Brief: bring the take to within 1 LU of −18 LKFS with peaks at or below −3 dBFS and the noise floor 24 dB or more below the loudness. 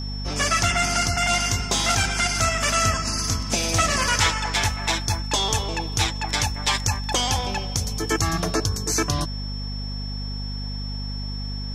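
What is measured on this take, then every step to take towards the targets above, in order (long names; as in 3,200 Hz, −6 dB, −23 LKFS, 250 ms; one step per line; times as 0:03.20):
mains hum 50 Hz; hum harmonics up to 250 Hz; level of the hum −28 dBFS; interfering tone 5,400 Hz; level of the tone −35 dBFS; integrated loudness −23.0 LKFS; sample peak −6.0 dBFS; target loudness −18.0 LKFS
→ hum removal 50 Hz, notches 5
notch filter 5,400 Hz, Q 30
level +5 dB
brickwall limiter −3 dBFS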